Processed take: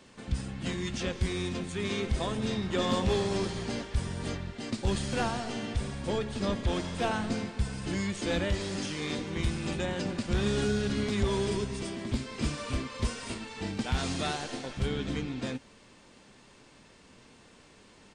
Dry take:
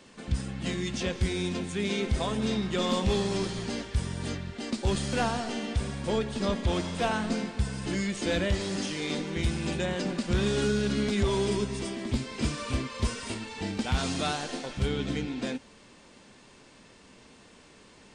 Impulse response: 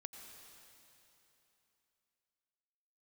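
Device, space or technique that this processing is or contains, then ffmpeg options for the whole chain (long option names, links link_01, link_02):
octave pedal: -filter_complex "[0:a]asettb=1/sr,asplit=3[link_01][link_02][link_03];[link_01]atrim=end=2.694[link_04];[link_02]atrim=start=2.69:end=4.52,asetpts=PTS-STARTPTS,afade=type=in:duration=0.004:curve=qsin,afade=type=out:start_time=1.826:duration=0.004:curve=qsin,equalizer=frequency=690:width=0.53:gain=3[link_05];[link_03]atrim=start=4.516[link_06];[link_04][link_05]acrossfade=duration=0.004:curve1=hsin:curve2=qsin[link_07];[link_07][link_06]acrossfade=duration=0.004:curve1=qsin:curve2=hsin,asplit=2[link_08][link_09];[link_09]asetrate=22050,aresample=44100,atempo=2,volume=-9dB[link_10];[link_08][link_10]amix=inputs=2:normalize=0,volume=-2.5dB"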